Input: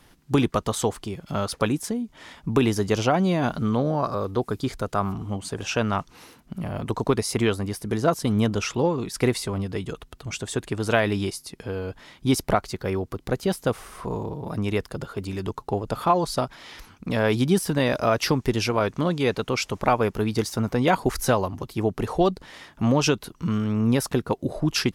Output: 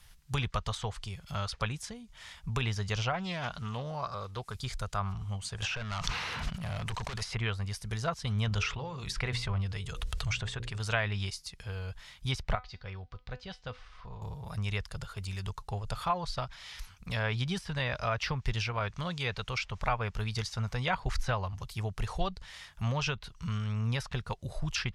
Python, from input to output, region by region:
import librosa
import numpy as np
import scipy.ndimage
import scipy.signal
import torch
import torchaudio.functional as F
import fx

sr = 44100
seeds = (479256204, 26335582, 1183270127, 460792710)

y = fx.chain(x, sr, fx.low_shelf(hz=120.0, db=-10.0),
    fx.doppler_dist(depth_ms=0.14), at=(3.12, 4.55))
y = fx.chain(y, sr, fx.highpass(hz=140.0, slope=6),
    fx.clip_hard(threshold_db=-26.5),
    fx.env_flatten(amount_pct=100), at=(5.62, 7.35))
y = fx.chain(y, sr, fx.tremolo(hz=1.1, depth=0.72),
    fx.hum_notches(base_hz=60, count=9),
    fx.env_flatten(amount_pct=50), at=(8.47, 10.8))
y = fx.chain(y, sr, fx.lowpass(hz=4600.0, slope=24),
    fx.comb_fb(f0_hz=250.0, decay_s=0.23, harmonics='all', damping=0.0, mix_pct=60), at=(12.55, 14.22))
y = fx.tone_stack(y, sr, knobs='10-0-10')
y = fx.env_lowpass_down(y, sr, base_hz=2700.0, full_db=-28.5)
y = fx.low_shelf(y, sr, hz=280.0, db=9.5)